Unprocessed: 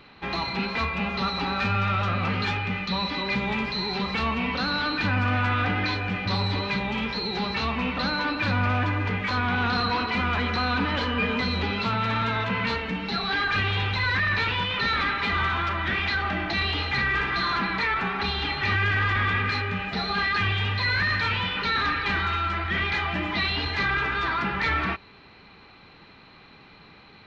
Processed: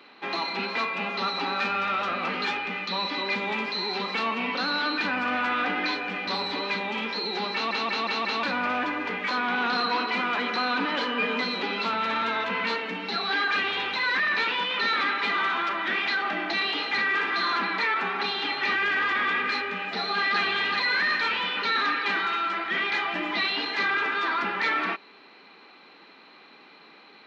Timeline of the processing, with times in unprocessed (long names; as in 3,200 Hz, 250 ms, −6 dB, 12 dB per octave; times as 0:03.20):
0:07.53: stutter in place 0.18 s, 5 plays
0:19.87–0:20.41: delay throw 380 ms, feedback 45%, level −4 dB
whole clip: high-pass filter 250 Hz 24 dB per octave